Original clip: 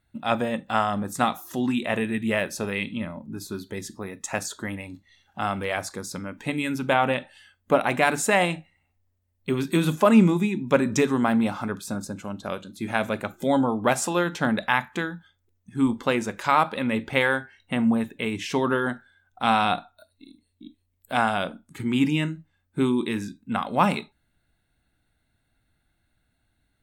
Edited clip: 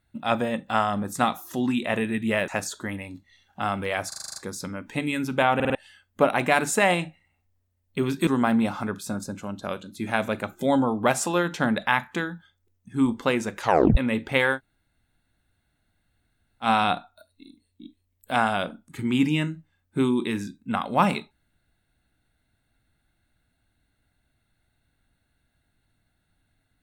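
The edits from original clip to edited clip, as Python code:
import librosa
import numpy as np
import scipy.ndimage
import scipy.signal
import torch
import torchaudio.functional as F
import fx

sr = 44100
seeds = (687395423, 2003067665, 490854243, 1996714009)

y = fx.edit(x, sr, fx.cut(start_s=2.48, length_s=1.79),
    fx.stutter(start_s=5.87, slice_s=0.04, count=8),
    fx.stutter_over(start_s=7.06, slice_s=0.05, count=4),
    fx.cut(start_s=9.78, length_s=1.3),
    fx.tape_stop(start_s=16.42, length_s=0.36),
    fx.room_tone_fill(start_s=17.37, length_s=2.09, crossfade_s=0.1), tone=tone)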